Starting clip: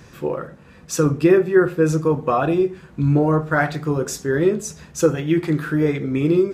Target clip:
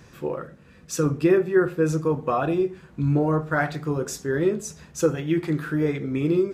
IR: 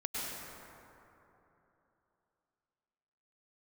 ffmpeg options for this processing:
-filter_complex "[0:a]asettb=1/sr,asplit=3[link_01][link_02][link_03];[link_01]atrim=end=0.434[link_04];[link_02]atrim=start=0.43:end=1.03,asetpts=PTS-STARTPTS,afade=type=in:duration=0.004:curve=qsin,afade=type=out:start_time=0.596:duration=0.004:curve=qsin,equalizer=frequency=860:width_type=o:width=0.77:gain=-6[link_05];[link_03]atrim=start=1.026[link_06];[link_04][link_05]acrossfade=duration=0.004:curve1=hsin:curve2=qsin[link_07];[link_07][link_06]acrossfade=duration=0.004:curve1=qsin:curve2=hsin,volume=-4.5dB"

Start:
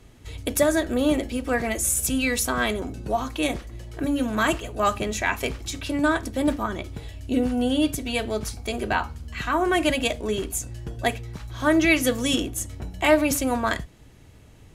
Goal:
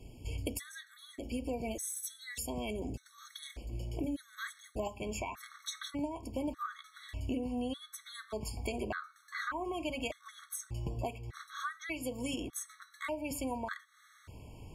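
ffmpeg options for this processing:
ffmpeg -i in.wav -af "asetnsamples=nb_out_samples=441:pad=0,asendcmd='4.87 equalizer g 7',equalizer=frequency=1200:width_type=o:width=0.81:gain=-10,acompressor=threshold=-33dB:ratio=10,afftfilt=real='re*gt(sin(2*PI*0.84*pts/sr)*(1-2*mod(floor(b*sr/1024/1100),2)),0)':imag='im*gt(sin(2*PI*0.84*pts/sr)*(1-2*mod(floor(b*sr/1024/1100),2)),0)':win_size=1024:overlap=0.75" out.wav

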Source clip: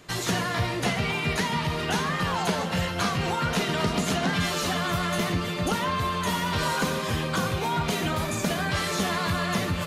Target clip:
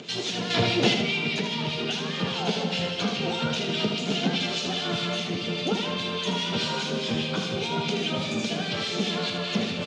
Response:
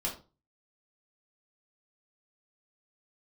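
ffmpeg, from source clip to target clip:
-filter_complex "[0:a]acrossover=split=1800[link_01][link_02];[link_01]aeval=exprs='val(0)*(1-0.7/2+0.7/2*cos(2*PI*4.9*n/s))':channel_layout=same[link_03];[link_02]aeval=exprs='val(0)*(1-0.7/2-0.7/2*cos(2*PI*4.9*n/s))':channel_layout=same[link_04];[link_03][link_04]amix=inputs=2:normalize=0,acompressor=mode=upward:threshold=-37dB:ratio=2.5,aexciter=amount=2:drive=5.8:freq=2200,alimiter=limit=-17dB:level=0:latency=1:release=269,asettb=1/sr,asplit=3[link_05][link_06][link_07];[link_05]atrim=end=0.504[link_08];[link_06]atrim=start=0.5:end=0.94,asetpts=PTS-STARTPTS,afade=type=in:duration=0.004:curve=qsin,afade=type=out:start_time=0.436:duration=0.004:curve=qsin,acontrast=63[link_09];[link_07]atrim=start=0.936[link_10];[link_08][link_09]acrossfade=duration=0.004:curve1=hsin:curve2=qsin[link_11];[link_11][link_10]acrossfade=duration=0.004:curve1=qsin:curve2=hsin,highpass=frequency=130:width=0.5412,highpass=frequency=130:width=1.3066,equalizer=frequency=220:width_type=q:width=4:gain=8,equalizer=frequency=430:width_type=q:width=4:gain=7,equalizer=frequency=1100:width_type=q:width=4:gain=-8,equalizer=frequency=1900:width_type=q:width=4:gain=-7,equalizer=frequency=3500:width_type=q:width=4:gain=5,lowpass=frequency=5100:width=0.5412,lowpass=frequency=5100:width=1.3066,aecho=1:1:78|156|234|312|390:0.473|0.203|0.0875|0.0376|0.0162"

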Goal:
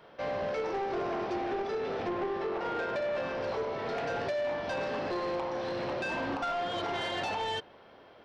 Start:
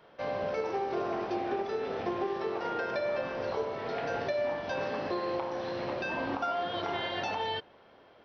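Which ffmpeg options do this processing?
ffmpeg -i in.wav -filter_complex "[0:a]asettb=1/sr,asplit=3[link_01][link_02][link_03];[link_01]atrim=end=2.084[link_04];[link_02]atrim=start=2.08:end=3.18,asetpts=PTS-STARTPTS,afade=type=in:duration=0.004:curve=qsin,afade=type=out:start_time=1.096:duration=0.004:curve=qsin,aemphasis=mode=reproduction:type=50fm[link_05];[link_03]atrim=start=3.176[link_06];[link_04][link_05]acrossfade=duration=0.004:curve1=hsin:curve2=qsin[link_07];[link_07][link_06]acrossfade=duration=0.004:curve1=qsin:curve2=hsin,asoftclip=type=tanh:threshold=-31dB,volume=3dB" out.wav

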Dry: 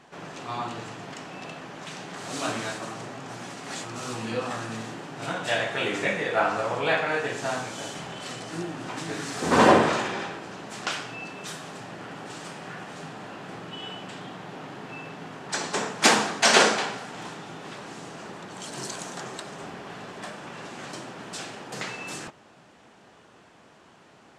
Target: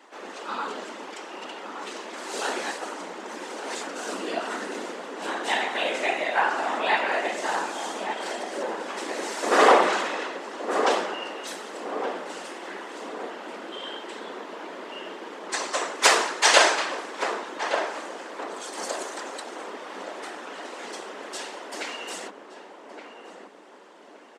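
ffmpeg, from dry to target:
ffmpeg -i in.wav -filter_complex "[0:a]afftfilt=real='hypot(re,im)*cos(2*PI*random(0))':imag='hypot(re,im)*sin(2*PI*random(1))':win_size=512:overlap=0.75,afreqshift=180,asplit=2[link_01][link_02];[link_02]adelay=1169,lowpass=frequency=970:poles=1,volume=-5dB,asplit=2[link_03][link_04];[link_04]adelay=1169,lowpass=frequency=970:poles=1,volume=0.52,asplit=2[link_05][link_06];[link_06]adelay=1169,lowpass=frequency=970:poles=1,volume=0.52,asplit=2[link_07][link_08];[link_08]adelay=1169,lowpass=frequency=970:poles=1,volume=0.52,asplit=2[link_09][link_10];[link_10]adelay=1169,lowpass=frequency=970:poles=1,volume=0.52,asplit=2[link_11][link_12];[link_12]adelay=1169,lowpass=frequency=970:poles=1,volume=0.52,asplit=2[link_13][link_14];[link_14]adelay=1169,lowpass=frequency=970:poles=1,volume=0.52[link_15];[link_01][link_03][link_05][link_07][link_09][link_11][link_13][link_15]amix=inputs=8:normalize=0,volume=6.5dB" out.wav

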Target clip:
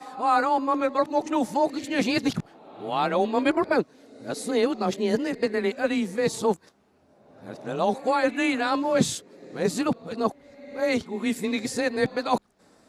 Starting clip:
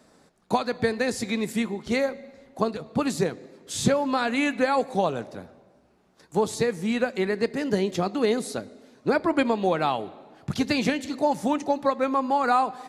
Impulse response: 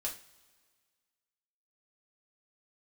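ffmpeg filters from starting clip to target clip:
-af "areverse,afreqshift=19"

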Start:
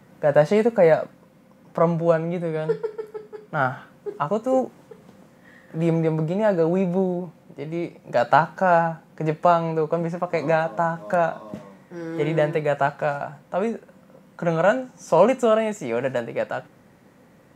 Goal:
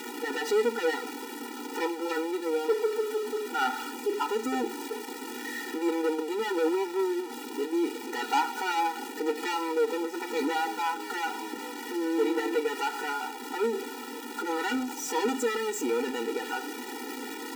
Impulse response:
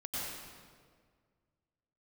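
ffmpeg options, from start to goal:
-filter_complex "[0:a]aeval=exprs='val(0)+0.5*0.0355*sgn(val(0))':channel_layout=same,adynamicequalizer=threshold=0.0141:dfrequency=720:dqfactor=7.8:tfrequency=720:tqfactor=7.8:attack=5:release=100:ratio=0.375:range=1.5:mode=boostabove:tftype=bell,acrossover=split=3700[link_01][link_02];[link_01]asoftclip=type=tanh:threshold=-19.5dB[link_03];[link_03][link_02]amix=inputs=2:normalize=0,afftfilt=real='re*eq(mod(floor(b*sr/1024/250),2),1)':imag='im*eq(mod(floor(b*sr/1024/250),2),1)':win_size=1024:overlap=0.75,volume=1dB"

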